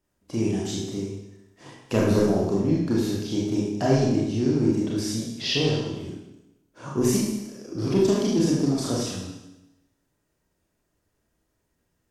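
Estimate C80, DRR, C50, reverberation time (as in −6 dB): 3.5 dB, −5.5 dB, 0.5 dB, 0.95 s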